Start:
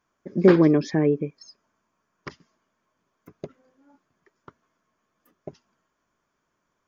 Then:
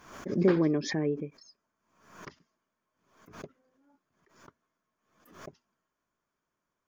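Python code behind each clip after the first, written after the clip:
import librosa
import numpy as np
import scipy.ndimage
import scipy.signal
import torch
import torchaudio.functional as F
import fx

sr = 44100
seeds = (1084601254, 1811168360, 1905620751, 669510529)

y = fx.pre_swell(x, sr, db_per_s=84.0)
y = y * librosa.db_to_amplitude(-9.0)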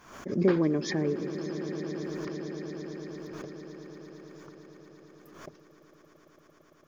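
y = fx.echo_swell(x, sr, ms=113, loudest=8, wet_db=-17)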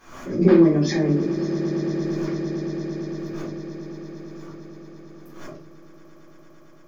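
y = fx.room_shoebox(x, sr, seeds[0], volume_m3=210.0, walls='furnished', distance_m=3.8)
y = y * librosa.db_to_amplitude(-1.5)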